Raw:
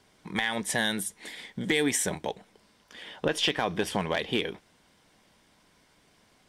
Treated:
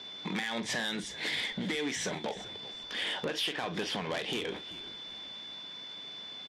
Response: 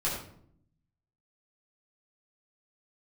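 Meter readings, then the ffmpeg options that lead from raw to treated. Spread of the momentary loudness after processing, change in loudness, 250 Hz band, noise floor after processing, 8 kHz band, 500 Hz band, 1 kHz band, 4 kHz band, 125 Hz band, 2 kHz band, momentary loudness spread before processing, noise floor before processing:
9 LU, -6.0 dB, -5.5 dB, -45 dBFS, -8.5 dB, -6.0 dB, -5.5 dB, -1.0 dB, -5.5 dB, -4.0 dB, 15 LU, -64 dBFS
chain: -filter_complex "[0:a]highshelf=f=2900:g=6.5,aeval=exprs='val(0)+0.00224*sin(2*PI*3500*n/s)':c=same,asplit=2[s0][s1];[s1]alimiter=level_in=1.19:limit=0.0631:level=0:latency=1,volume=0.841,volume=0.891[s2];[s0][s2]amix=inputs=2:normalize=0,lowpass=f=4900:w=0.5412,lowpass=f=4900:w=1.3066,acompressor=threshold=0.0316:ratio=16,asplit=2[s3][s4];[s4]adelay=44,volume=0.2[s5];[s3][s5]amix=inputs=2:normalize=0,asoftclip=type=tanh:threshold=0.0282,highpass=170,asplit=2[s6][s7];[s7]asplit=3[s8][s9][s10];[s8]adelay=387,afreqshift=-68,volume=0.141[s11];[s9]adelay=774,afreqshift=-136,volume=0.0468[s12];[s10]adelay=1161,afreqshift=-204,volume=0.0153[s13];[s11][s12][s13]amix=inputs=3:normalize=0[s14];[s6][s14]amix=inputs=2:normalize=0,volume=1.58" -ar 32000 -c:a libvorbis -b:a 48k

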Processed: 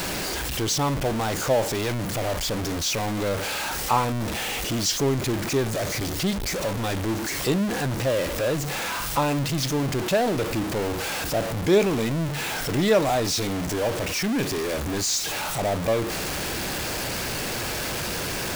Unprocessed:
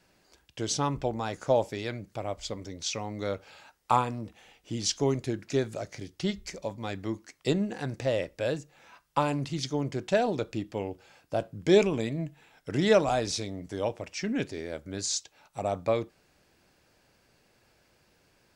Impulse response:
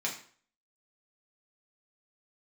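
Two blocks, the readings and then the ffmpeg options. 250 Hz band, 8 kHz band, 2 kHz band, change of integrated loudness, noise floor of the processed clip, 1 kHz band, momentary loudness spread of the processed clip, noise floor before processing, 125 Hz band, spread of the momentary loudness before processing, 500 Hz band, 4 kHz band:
+5.5 dB, +10.0 dB, +10.0 dB, +5.5 dB, -29 dBFS, +5.0 dB, 5 LU, -67 dBFS, +7.5 dB, 12 LU, +4.0 dB, +9.5 dB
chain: -af "aeval=exprs='val(0)+0.5*0.0708*sgn(val(0))':c=same"

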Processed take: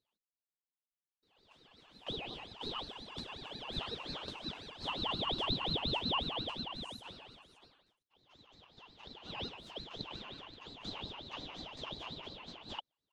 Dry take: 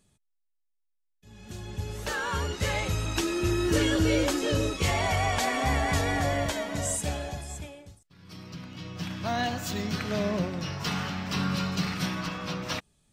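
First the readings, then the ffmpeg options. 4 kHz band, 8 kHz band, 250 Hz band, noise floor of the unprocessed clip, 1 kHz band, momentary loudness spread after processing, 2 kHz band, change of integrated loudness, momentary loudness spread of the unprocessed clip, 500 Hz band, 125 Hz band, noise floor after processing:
-3.5 dB, -28.5 dB, -17.0 dB, -75 dBFS, -11.5 dB, 17 LU, -15.5 dB, -11.5 dB, 14 LU, -16.0 dB, -18.5 dB, under -85 dBFS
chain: -af "bandpass=f=1900:t=q:w=17:csg=0,aeval=exprs='val(0)*sin(2*PI*1500*n/s+1500*0.45/5.6*sin(2*PI*5.6*n/s))':c=same,volume=2.51"

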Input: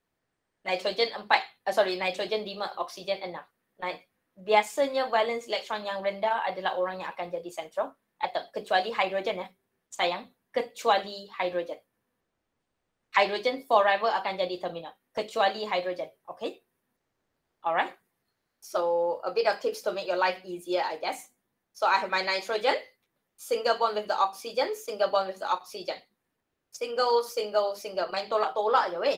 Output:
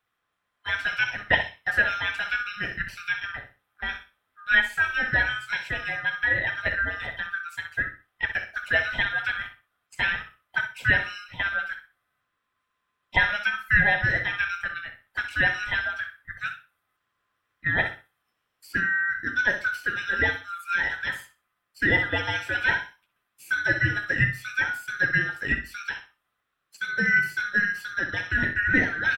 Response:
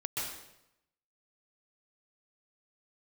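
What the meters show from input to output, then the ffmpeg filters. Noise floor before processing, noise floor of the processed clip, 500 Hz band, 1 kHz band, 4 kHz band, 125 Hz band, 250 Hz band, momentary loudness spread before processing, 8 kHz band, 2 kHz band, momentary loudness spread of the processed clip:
-81 dBFS, -79 dBFS, -11.5 dB, -7.5 dB, -0.5 dB, +17.5 dB, +3.0 dB, 13 LU, no reading, +12.5 dB, 12 LU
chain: -filter_complex "[0:a]afftfilt=real='real(if(lt(b,960),b+48*(1-2*mod(floor(b/48),2)),b),0)':imag='imag(if(lt(b,960),b+48*(1-2*mod(floor(b/48),2)),b),0)':win_size=2048:overlap=0.75,acrossover=split=2600[s0][s1];[s1]acompressor=threshold=0.00794:ratio=4:attack=1:release=60[s2];[s0][s2]amix=inputs=2:normalize=0,equalizer=f=100:t=o:w=0.67:g=5,equalizer=f=2500:t=o:w=0.67:g=9,equalizer=f=6300:t=o:w=0.67:g=-4,asplit=2[s3][s4];[s4]adelay=63,lowpass=f=4300:p=1,volume=0.355,asplit=2[s5][s6];[s6]adelay=63,lowpass=f=4300:p=1,volume=0.26,asplit=2[s7][s8];[s8]adelay=63,lowpass=f=4300:p=1,volume=0.26[s9];[s5][s7][s9]amix=inputs=3:normalize=0[s10];[s3][s10]amix=inputs=2:normalize=0"

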